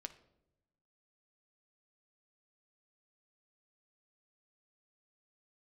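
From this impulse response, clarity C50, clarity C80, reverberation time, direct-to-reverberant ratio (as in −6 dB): 13.5 dB, 17.5 dB, 0.90 s, 7.0 dB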